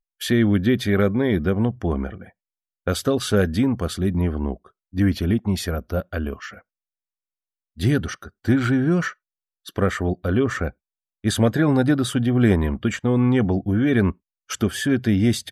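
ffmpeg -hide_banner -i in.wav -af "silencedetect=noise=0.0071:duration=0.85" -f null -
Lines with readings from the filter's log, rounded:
silence_start: 6.60
silence_end: 7.77 | silence_duration: 1.17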